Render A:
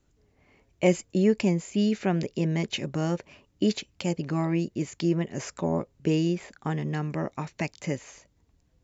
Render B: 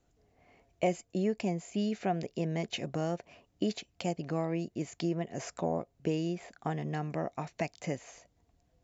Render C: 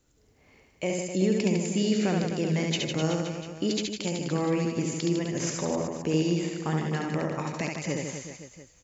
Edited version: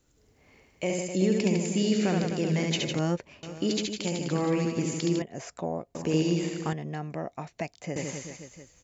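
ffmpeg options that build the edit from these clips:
-filter_complex "[1:a]asplit=2[s0][s1];[2:a]asplit=4[s2][s3][s4][s5];[s2]atrim=end=2.992[s6];[0:a]atrim=start=2.988:end=3.432[s7];[s3]atrim=start=3.428:end=5.222[s8];[s0]atrim=start=5.218:end=5.952[s9];[s4]atrim=start=5.948:end=6.732[s10];[s1]atrim=start=6.728:end=7.962[s11];[s5]atrim=start=7.958[s12];[s6][s7]acrossfade=d=0.004:c1=hsin:c2=hsin[s13];[s13][s8]acrossfade=d=0.004:c1=hsin:c2=hsin[s14];[s14][s9]acrossfade=d=0.004:c1=hsin:c2=hsin[s15];[s15][s10]acrossfade=d=0.004:c1=hsin:c2=hsin[s16];[s16][s11]acrossfade=d=0.004:c1=hsin:c2=hsin[s17];[s17][s12]acrossfade=d=0.004:c1=hsin:c2=hsin"

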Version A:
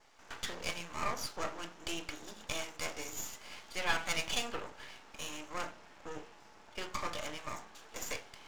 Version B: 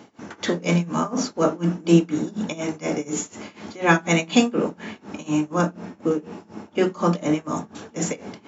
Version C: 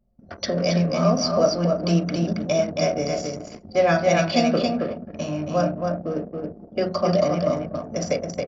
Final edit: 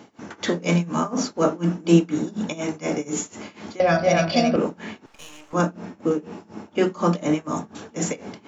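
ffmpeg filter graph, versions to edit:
-filter_complex "[1:a]asplit=3[s0][s1][s2];[s0]atrim=end=3.802[s3];[2:a]atrim=start=3.798:end=4.562[s4];[s1]atrim=start=4.558:end=5.062[s5];[0:a]atrim=start=5.058:end=5.532[s6];[s2]atrim=start=5.528[s7];[s3][s4]acrossfade=d=0.004:c1=hsin:c2=hsin[s8];[s8][s5]acrossfade=d=0.004:c1=hsin:c2=hsin[s9];[s9][s6]acrossfade=d=0.004:c1=hsin:c2=hsin[s10];[s10][s7]acrossfade=d=0.004:c1=hsin:c2=hsin"

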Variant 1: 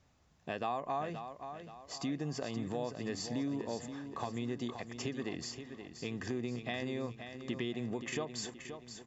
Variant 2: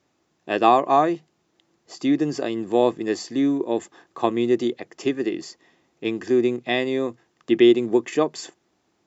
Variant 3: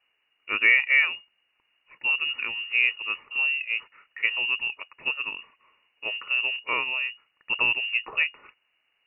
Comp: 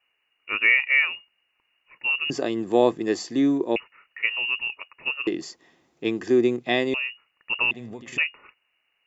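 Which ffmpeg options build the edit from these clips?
-filter_complex "[1:a]asplit=2[s0][s1];[2:a]asplit=4[s2][s3][s4][s5];[s2]atrim=end=2.302[s6];[s0]atrim=start=2.298:end=3.762[s7];[s3]atrim=start=3.758:end=5.272[s8];[s1]atrim=start=5.268:end=6.942[s9];[s4]atrim=start=6.938:end=7.712[s10];[0:a]atrim=start=7.708:end=8.182[s11];[s5]atrim=start=8.178[s12];[s6][s7]acrossfade=d=0.004:c1=hsin:c2=hsin[s13];[s13][s8]acrossfade=d=0.004:c1=hsin:c2=hsin[s14];[s14][s9]acrossfade=d=0.004:c1=hsin:c2=hsin[s15];[s15][s10]acrossfade=d=0.004:c1=hsin:c2=hsin[s16];[s16][s11]acrossfade=d=0.004:c1=hsin:c2=hsin[s17];[s17][s12]acrossfade=d=0.004:c1=hsin:c2=hsin"

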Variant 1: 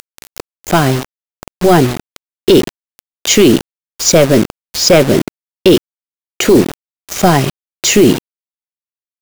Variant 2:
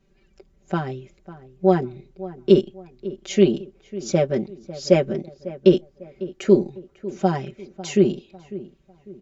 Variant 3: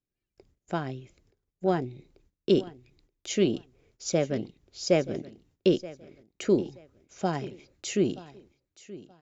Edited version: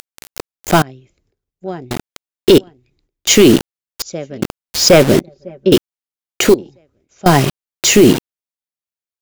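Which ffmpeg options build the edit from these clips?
-filter_complex "[2:a]asplit=4[s0][s1][s2][s3];[0:a]asplit=6[s4][s5][s6][s7][s8][s9];[s4]atrim=end=0.822[s10];[s0]atrim=start=0.818:end=1.912[s11];[s5]atrim=start=1.908:end=2.582[s12];[s1]atrim=start=2.578:end=3.272[s13];[s6]atrim=start=3.268:end=4.022[s14];[s2]atrim=start=4.018:end=4.422[s15];[s7]atrim=start=4.418:end=5.202[s16];[1:a]atrim=start=5.198:end=5.722[s17];[s8]atrim=start=5.718:end=6.542[s18];[s3]atrim=start=6.538:end=7.262[s19];[s9]atrim=start=7.258[s20];[s10][s11]acrossfade=d=0.004:c1=hsin:c2=hsin[s21];[s21][s12]acrossfade=d=0.004:c1=hsin:c2=hsin[s22];[s22][s13]acrossfade=d=0.004:c1=hsin:c2=hsin[s23];[s23][s14]acrossfade=d=0.004:c1=hsin:c2=hsin[s24];[s24][s15]acrossfade=d=0.004:c1=hsin:c2=hsin[s25];[s25][s16]acrossfade=d=0.004:c1=hsin:c2=hsin[s26];[s26][s17]acrossfade=d=0.004:c1=hsin:c2=hsin[s27];[s27][s18]acrossfade=d=0.004:c1=hsin:c2=hsin[s28];[s28][s19]acrossfade=d=0.004:c1=hsin:c2=hsin[s29];[s29][s20]acrossfade=d=0.004:c1=hsin:c2=hsin"

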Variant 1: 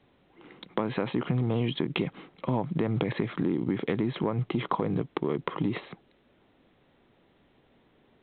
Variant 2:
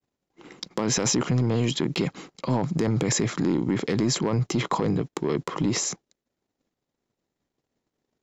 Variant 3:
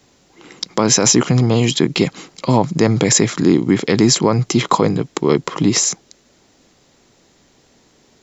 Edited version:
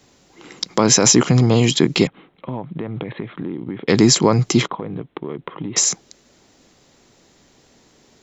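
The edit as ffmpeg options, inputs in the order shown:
-filter_complex "[0:a]asplit=2[s0][s1];[2:a]asplit=3[s2][s3][s4];[s2]atrim=end=2.072[s5];[s0]atrim=start=2.068:end=3.882[s6];[s3]atrim=start=3.878:end=4.68[s7];[s1]atrim=start=4.66:end=5.78[s8];[s4]atrim=start=5.76[s9];[s5][s6]acrossfade=d=0.004:c1=hsin:c2=hsin[s10];[s10][s7]acrossfade=d=0.004:c1=hsin:c2=hsin[s11];[s11][s8]acrossfade=d=0.02:c1=tri:c2=tri[s12];[s12][s9]acrossfade=d=0.02:c1=tri:c2=tri"

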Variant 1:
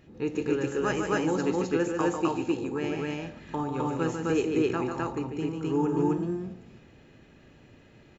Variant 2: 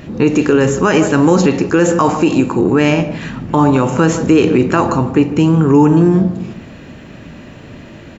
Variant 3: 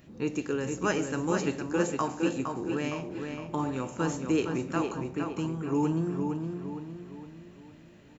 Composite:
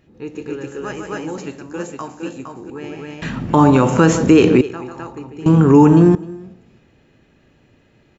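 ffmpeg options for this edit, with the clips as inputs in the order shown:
-filter_complex "[1:a]asplit=2[s0][s1];[0:a]asplit=4[s2][s3][s4][s5];[s2]atrim=end=1.382[s6];[2:a]atrim=start=1.378:end=2.702[s7];[s3]atrim=start=2.698:end=3.222[s8];[s0]atrim=start=3.218:end=4.612[s9];[s4]atrim=start=4.608:end=5.462[s10];[s1]atrim=start=5.458:end=6.152[s11];[s5]atrim=start=6.148[s12];[s6][s7]acrossfade=d=0.004:c1=hsin:c2=hsin[s13];[s13][s8]acrossfade=d=0.004:c1=hsin:c2=hsin[s14];[s14][s9]acrossfade=d=0.004:c1=hsin:c2=hsin[s15];[s15][s10]acrossfade=d=0.004:c1=hsin:c2=hsin[s16];[s16][s11]acrossfade=d=0.004:c1=hsin:c2=hsin[s17];[s17][s12]acrossfade=d=0.004:c1=hsin:c2=hsin"

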